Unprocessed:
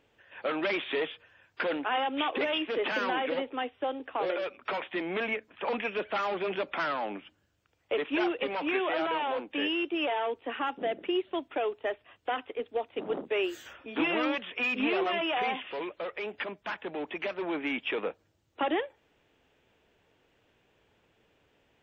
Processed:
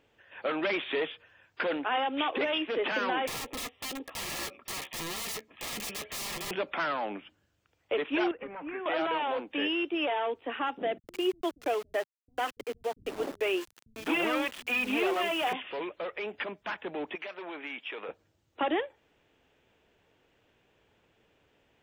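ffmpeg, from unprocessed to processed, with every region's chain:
-filter_complex "[0:a]asettb=1/sr,asplit=3[a][b][c];[a]atrim=end=3.274[d];[b]atrim=start=3.27:end=6.51,asetpts=PTS-STARTPTS,afade=t=in:d=0.004:c=qsin,afade=t=out:st=3.236:d=0.004:c=qsin,aeval=exprs='(mod(39.8*val(0)+1,2)-1)/39.8':c=same,asuperstop=centerf=1500:order=8:qfactor=6.8,asplit=2[e][f];[f]adelay=14,volume=-13dB[g];[e][g]amix=inputs=2:normalize=0,atrim=end_sample=142884[h];[c]atrim=start=6.506[i];[d][h]acrossfade=d=0.004:c1=hsin:c2=qsin[j];[j][i]acrossfade=d=0.004:c1=qsin:c2=hsin,asettb=1/sr,asplit=3[k][l][m];[k]atrim=end=8.314[n];[l]atrim=start=8.31:end=8.86,asetpts=PTS-STARTPTS,afade=t=in:d=0.004:c=qsin,afade=t=out:st=0.546:d=0.004:c=qsin,lowpass=f=1.8k:w=0.5412,lowpass=f=1.8k:w=1.3066,equalizer=f=590:w=0.44:g=-10[o];[m]atrim=start=8.856[p];[n][o]acrossfade=d=0.004:c1=hsin:c2=qsin[q];[q][p]acrossfade=d=0.004:c1=qsin:c2=hsin,asettb=1/sr,asplit=3[r][s][t];[r]atrim=end=10.984[u];[s]atrim=start=10.98:end=15.53,asetpts=PTS-STARTPTS,afade=t=in:d=0.004:c=qsin,afade=t=out:st=4.546:d=0.004:c=qsin,aphaser=in_gain=1:out_gain=1:delay=3.7:decay=0.25:speed=1.6:type=triangular,aeval=exprs='val(0)*gte(abs(val(0)),0.0112)':c=same,acrossover=split=150[v][w];[w]adelay=100[x];[v][x]amix=inputs=2:normalize=0,atrim=end_sample=200655[y];[t]atrim=start=15.526[z];[u][y]acrossfade=d=0.004:c1=hsin:c2=qsin[aa];[aa][z]acrossfade=d=0.004:c1=qsin:c2=hsin,asettb=1/sr,asplit=3[ab][ac][ad];[ab]atrim=end=17.154[ae];[ac]atrim=start=17.15:end=18.09,asetpts=PTS-STARTPTS,afade=t=in:d=0.004:c=qsin,afade=t=out:st=0.936:d=0.004:c=qsin,highpass=f=740:p=1,acompressor=threshold=-37dB:ratio=2.5:attack=3.2:release=140:knee=1:detection=peak[af];[ad]atrim=start=18.086[ag];[ae][af]acrossfade=d=0.004:c1=hsin:c2=qsin[ah];[ah][ag]acrossfade=d=0.004:c1=qsin:c2=hsin"

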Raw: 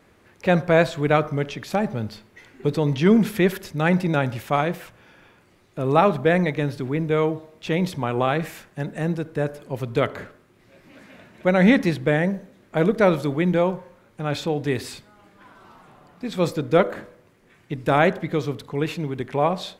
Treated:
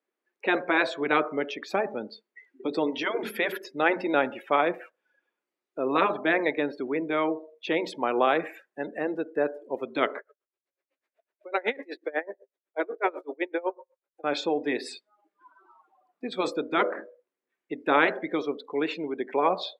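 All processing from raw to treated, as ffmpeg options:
-filter_complex "[0:a]asettb=1/sr,asplit=3[a][b][c];[a]atrim=end=10.184[d];[b]atrim=start=10.18:end=14.24,asetpts=PTS-STARTPTS,afade=t=in:d=0.004:c=qsin,afade=t=out:st=4.056:d=0.004:c=qsin,highpass=f=340:w=0.5412,highpass=f=340:w=1.3066,aecho=1:1:116:0.075,atrim=end_sample=179046,aeval=exprs='val(0)*pow(10,-27*(0.5-0.5*cos(2*PI*8*n/s))/20)':c=same[e];[c]atrim=start=14.236[f];[d][e]acrossfade=d=0.004:c1=hsin:c2=qsin[g];[g][f]acrossfade=d=0.004:c1=qsin:c2=hsin,afftfilt=real='re*lt(hypot(re,im),0.794)':imag='im*lt(hypot(re,im),0.794)':win_size=1024:overlap=0.75,highpass=f=280:w=0.5412,highpass=f=280:w=1.3066,afftdn=nr=29:nf=-39"

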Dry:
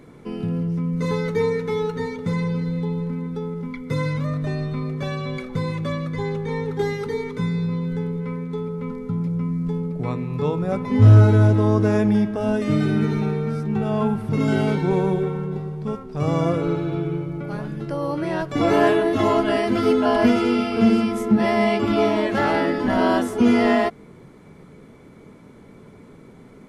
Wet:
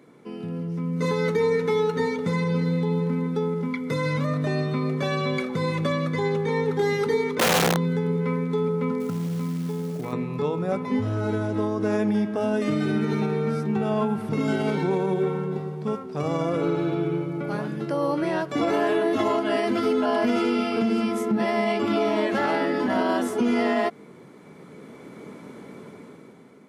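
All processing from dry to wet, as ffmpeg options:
-filter_complex "[0:a]asettb=1/sr,asplit=3[a][b][c];[a]atrim=end=7.354[d];[b]atrim=start=7.35:end=7.77,asetpts=PTS-STARTPTS,afade=t=in:d=0.004:c=qsin,afade=t=out:st=0.416:d=0.004:c=qsin,aemphasis=mode=reproduction:type=50fm,bandreject=f=50:t=h:w=6,bandreject=f=100:t=h:w=6,bandreject=f=150:t=h:w=6,bandreject=f=200:t=h:w=6,bandreject=f=250:t=h:w=6,bandreject=f=300:t=h:w=6,bandreject=f=350:t=h:w=6,aeval=exprs='(mod(9.44*val(0)+1,2)-1)/9.44':c=same[e];[c]atrim=start=7.766[f];[d][e]acrossfade=d=0.004:c1=hsin:c2=qsin[g];[g][f]acrossfade=d=0.004:c1=qsin:c2=hsin,asettb=1/sr,asplit=3[h][i][j];[h]atrim=end=9.004[k];[i]atrim=start=9:end=10.13,asetpts=PTS-STARTPTS,afade=t=in:d=0.004:c=qsin,afade=t=out:st=1.126:d=0.004:c=qsin,acompressor=threshold=-26dB:ratio=12:attack=3.2:release=140:knee=1:detection=peak,acrusher=bits=6:mode=log:mix=0:aa=0.000001[l];[j]atrim=start=10.126[m];[k][l]acrossfade=d=0.004:c1=hsin:c2=qsin[n];[n][m]acrossfade=d=0.004:c1=qsin:c2=hsin,dynaudnorm=f=200:g=9:m=11.5dB,alimiter=limit=-8.5dB:level=0:latency=1:release=94,highpass=190,volume=-5dB"

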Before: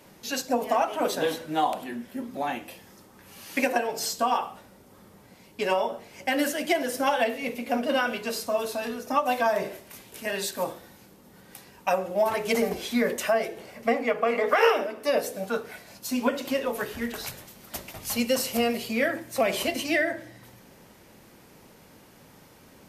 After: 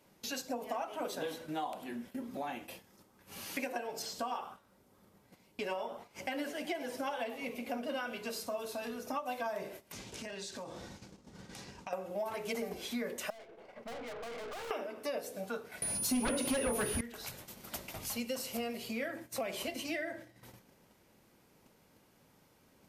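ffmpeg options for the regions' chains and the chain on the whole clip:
-filter_complex "[0:a]asettb=1/sr,asplit=3[a][b][c];[a]atrim=end=4.024[d];[b]atrim=start=4.02:end=7.71,asetpts=PTS-STARTPTS,afade=t=in:d=0.004:c=qsin,afade=t=out:st=3.686:d=0.004:c=qsin,acrossover=split=4800[e][f];[f]acompressor=threshold=-42dB:ratio=4:attack=1:release=60[g];[e][g]amix=inputs=2:normalize=0,asplit=4[h][i][j][k];[i]adelay=98,afreqshift=140,volume=-18dB[l];[j]adelay=196,afreqshift=280,volume=-26.4dB[m];[k]adelay=294,afreqshift=420,volume=-34.8dB[n];[h][l][m][n]amix=inputs=4:normalize=0,atrim=end_sample=162729[o];[c]atrim=start=7.706[p];[d][o]acrossfade=d=0.004:c1=hsin:c2=qsin[q];[q][p]acrossfade=d=0.004:c1=qsin:c2=hsin,asettb=1/sr,asplit=3[r][s][t];[r]atrim=end=9.924[u];[s]atrim=start=9.92:end=11.93,asetpts=PTS-STARTPTS,afade=t=in:d=0.004:c=qsin,afade=t=out:st=2.006:d=0.004:c=qsin,lowshelf=f=200:g=7,acompressor=threshold=-40dB:ratio=4:attack=3.2:release=140:knee=1:detection=peak,lowpass=f=6.4k:t=q:w=1.6[v];[t]atrim=start=11.926[w];[u][v]acrossfade=d=0.004:c1=hsin:c2=qsin[x];[x][w]acrossfade=d=0.004:c1=qsin:c2=hsin,asettb=1/sr,asplit=3[y][z][aa];[y]atrim=end=13.304[ab];[z]atrim=start=13.3:end=14.71,asetpts=PTS-STARTPTS,afade=t=in:d=0.004:c=qsin,afade=t=out:st=1.406:d=0.004:c=qsin,bandpass=f=800:t=q:w=0.65,aeval=exprs='(tanh(112*val(0)+0.3)-tanh(0.3))/112':c=same[ac];[aa]atrim=start=14.706[ad];[ab][ac]acrossfade=d=0.004:c1=hsin:c2=qsin[ae];[ae][ad]acrossfade=d=0.004:c1=qsin:c2=hsin,asettb=1/sr,asplit=3[af][ag][ah];[af]atrim=end=15.824[ai];[ag]atrim=start=15.82:end=17.01,asetpts=PTS-STARTPTS,afade=t=in:d=0.004:c=qsin,afade=t=out:st=1.186:d=0.004:c=qsin,aeval=exprs='0.282*sin(PI/2*3.98*val(0)/0.282)':c=same,aeval=exprs='val(0)+0.0891*sin(2*PI*9900*n/s)':c=same,lowshelf=f=250:g=7.5[aj];[ah]atrim=start=17.006[ak];[ai][aj]acrossfade=d=0.004:c1=hsin:c2=qsin[al];[al][ak]acrossfade=d=0.004:c1=qsin:c2=hsin,bandreject=f=1.8k:w=24,acompressor=threshold=-43dB:ratio=2.5,agate=range=-14dB:threshold=-49dB:ratio=16:detection=peak,volume=1dB"

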